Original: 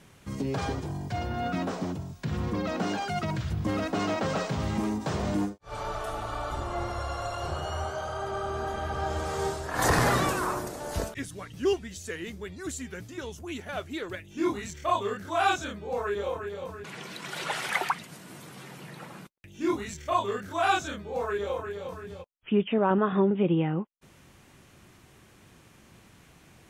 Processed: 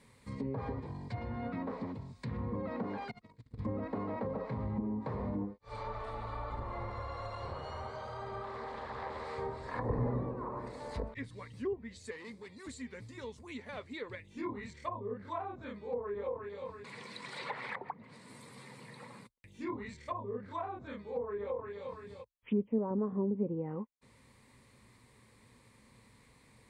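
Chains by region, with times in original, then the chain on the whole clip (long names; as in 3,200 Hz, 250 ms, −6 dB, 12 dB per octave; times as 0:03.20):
0:03.11–0:03.59: noise gate −27 dBFS, range −39 dB + upward compression, threshold −50 dBFS + hollow resonant body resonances 270/450 Hz, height 8 dB
0:08.43–0:09.38: low-shelf EQ 220 Hz −9 dB + highs frequency-modulated by the lows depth 0.45 ms
0:12.11–0:12.67: hard clipping −37 dBFS + high-pass filter 130 Hz
whole clip: EQ curve with evenly spaced ripples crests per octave 0.96, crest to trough 10 dB; treble cut that deepens with the level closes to 520 Hz, closed at −22.5 dBFS; level −8 dB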